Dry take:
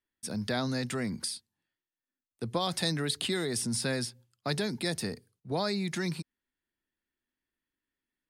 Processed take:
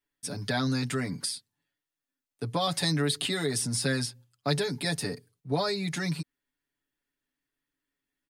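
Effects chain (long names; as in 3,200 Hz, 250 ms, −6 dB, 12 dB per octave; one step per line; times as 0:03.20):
comb filter 7 ms, depth 91%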